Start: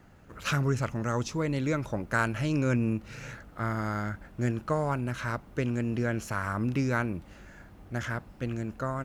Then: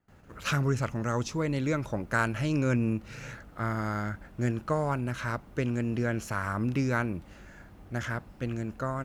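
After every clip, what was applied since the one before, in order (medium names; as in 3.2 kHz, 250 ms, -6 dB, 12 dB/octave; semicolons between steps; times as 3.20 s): gate with hold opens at -47 dBFS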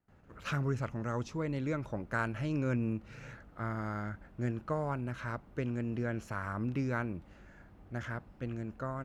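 treble shelf 4 kHz -10 dB; trim -5.5 dB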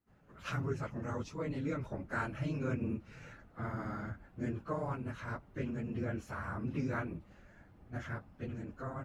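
phase randomisation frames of 50 ms; trim -3 dB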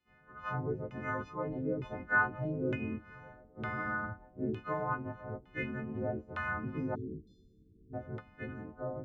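partials quantised in pitch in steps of 3 st; LFO low-pass saw down 1.1 Hz 380–3100 Hz; spectral selection erased 6.95–7.94 s, 500–3500 Hz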